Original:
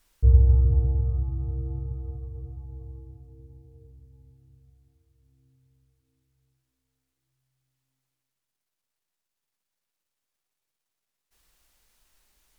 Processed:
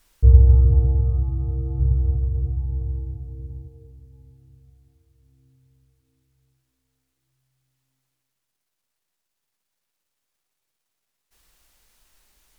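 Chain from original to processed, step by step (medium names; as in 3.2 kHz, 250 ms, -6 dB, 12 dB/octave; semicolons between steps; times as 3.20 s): 1.79–3.68 s: bass shelf 170 Hz +11 dB; trim +5 dB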